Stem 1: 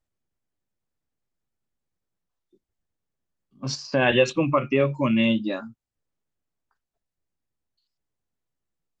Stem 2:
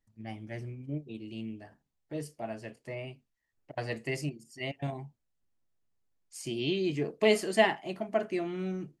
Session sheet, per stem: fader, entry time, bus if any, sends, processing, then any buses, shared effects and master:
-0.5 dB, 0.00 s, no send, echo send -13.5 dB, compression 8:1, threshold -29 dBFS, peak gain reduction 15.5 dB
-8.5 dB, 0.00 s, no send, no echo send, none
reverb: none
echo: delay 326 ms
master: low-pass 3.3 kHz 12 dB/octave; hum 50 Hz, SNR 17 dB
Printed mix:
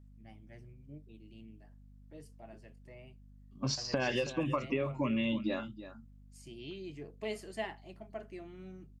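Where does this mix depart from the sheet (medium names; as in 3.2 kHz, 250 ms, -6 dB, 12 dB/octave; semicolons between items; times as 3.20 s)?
stem 2 -8.5 dB -> -14.5 dB; master: missing low-pass 3.3 kHz 12 dB/octave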